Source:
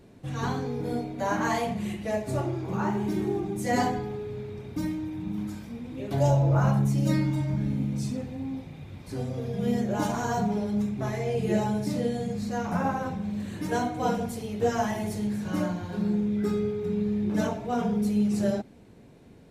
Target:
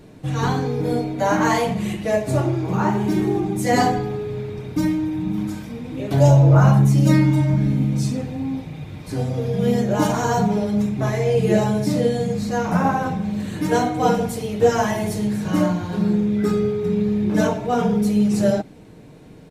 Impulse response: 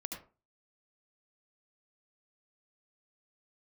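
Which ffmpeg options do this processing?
-af "aecho=1:1:6.5:0.34,volume=2.51"

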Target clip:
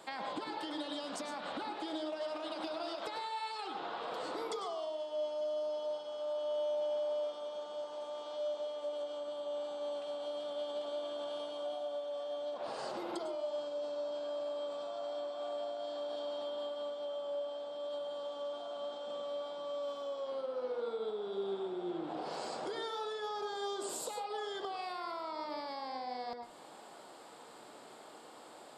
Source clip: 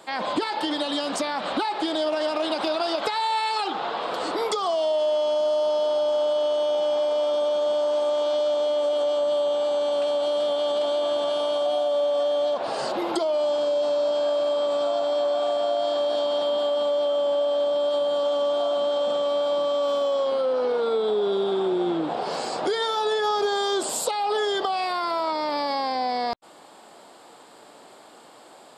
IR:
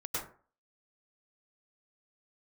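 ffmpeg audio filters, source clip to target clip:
-filter_complex "[0:a]acompressor=threshold=0.0224:ratio=6,asplit=2[s0][s1];[1:a]atrim=start_sample=2205[s2];[s1][s2]afir=irnorm=-1:irlink=0,volume=0.473[s3];[s0][s3]amix=inputs=2:normalize=0,volume=0.398"

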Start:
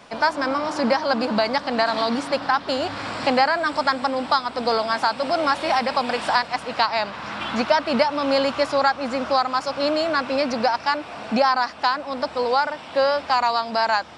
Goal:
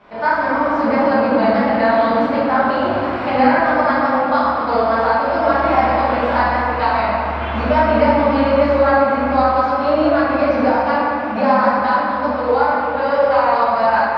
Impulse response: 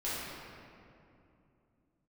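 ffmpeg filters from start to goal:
-filter_complex "[0:a]lowpass=2200,equalizer=f=73:w=5.5:g=14[s0];[1:a]atrim=start_sample=2205[s1];[s0][s1]afir=irnorm=-1:irlink=0"

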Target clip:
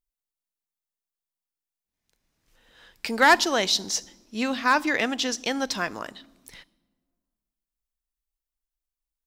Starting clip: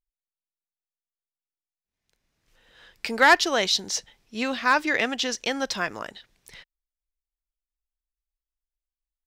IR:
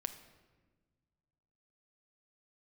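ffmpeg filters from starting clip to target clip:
-filter_complex "[0:a]asplit=2[s0][s1];[s1]equalizer=f=125:t=o:w=1:g=-6,equalizer=f=250:t=o:w=1:g=10,equalizer=f=500:t=o:w=1:g=-6,equalizer=f=1000:t=o:w=1:g=4,equalizer=f=2000:t=o:w=1:g=-11[s2];[1:a]atrim=start_sample=2205,highshelf=f=6000:g=11[s3];[s2][s3]afir=irnorm=-1:irlink=0,volume=0.447[s4];[s0][s4]amix=inputs=2:normalize=0,volume=0.75"

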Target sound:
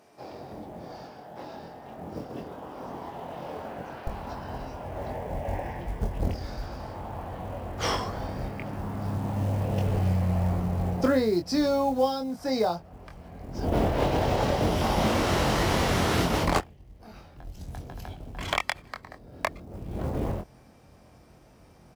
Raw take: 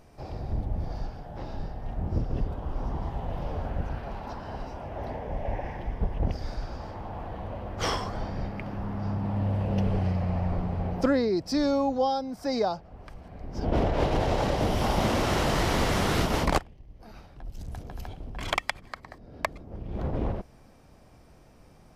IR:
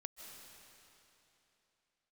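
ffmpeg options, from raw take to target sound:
-filter_complex "[0:a]asetnsamples=n=441:p=0,asendcmd='4.07 highpass f 46',highpass=260,acrusher=bits=7:mode=log:mix=0:aa=0.000001,asplit=2[s0][s1];[s1]adelay=23,volume=0.531[s2];[s0][s2]amix=inputs=2:normalize=0"

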